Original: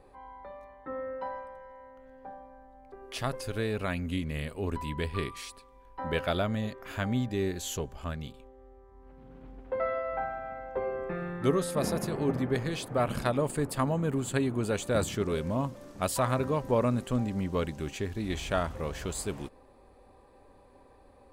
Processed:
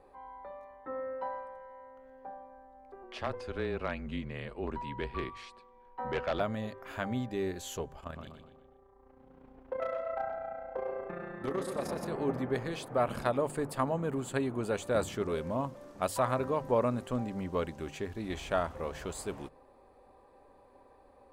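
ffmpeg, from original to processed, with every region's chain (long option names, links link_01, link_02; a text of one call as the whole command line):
ffmpeg -i in.wav -filter_complex "[0:a]asettb=1/sr,asplit=3[link_01][link_02][link_03];[link_01]atrim=end=3.034[link_04];[link_02]atrim=start=3.03:end=6.4,asetpts=PTS-STARTPTS,afade=type=in:duration=0.004:curve=qsin,afade=type=out:start_time=3.366:duration=0.004:curve=qsin,afreqshift=-25,aeval=exprs='0.0891*(abs(mod(val(0)/0.0891+3,4)-2)-1)':channel_layout=same,lowpass=4500[link_05];[link_03]atrim=start=6.396[link_06];[link_04][link_05]acrossfade=duration=0.004:curve1=hsin:curve2=qsin[link_07];[link_07][link_06]acrossfade=duration=0.004:curve1=qsin:curve2=hsin,asettb=1/sr,asplit=3[link_08][link_09][link_10];[link_08]atrim=end=8.004[link_11];[link_09]atrim=start=8:end=12.07,asetpts=PTS-STARTPTS,afade=type=in:duration=0.004:curve=qsin,afade=type=out:start_time=4.066:duration=0.004:curve=qsin,tremolo=f=29:d=0.75,volume=26dB,asoftclip=hard,volume=-26dB,asplit=2[link_12][link_13];[link_13]adelay=123,lowpass=frequency=4800:poles=1,volume=-6dB,asplit=2[link_14][link_15];[link_15]adelay=123,lowpass=frequency=4800:poles=1,volume=0.46,asplit=2[link_16][link_17];[link_17]adelay=123,lowpass=frequency=4800:poles=1,volume=0.46,asplit=2[link_18][link_19];[link_19]adelay=123,lowpass=frequency=4800:poles=1,volume=0.46,asplit=2[link_20][link_21];[link_21]adelay=123,lowpass=frequency=4800:poles=1,volume=0.46,asplit=2[link_22][link_23];[link_23]adelay=123,lowpass=frequency=4800:poles=1,volume=0.46[link_24];[link_12][link_14][link_16][link_18][link_20][link_22][link_24]amix=inputs=7:normalize=0,atrim=end_sample=179487[link_25];[link_10]atrim=start=12.066[link_26];[link_11][link_25]acrossfade=duration=0.004:curve1=hsin:curve2=qsin[link_27];[link_27][link_26]acrossfade=duration=0.004:curve1=qsin:curve2=hsin,equalizer=frequency=790:width=0.47:gain=7,bandreject=frequency=50:width_type=h:width=6,bandreject=frequency=100:width_type=h:width=6,bandreject=frequency=150:width_type=h:width=6,volume=-7dB" out.wav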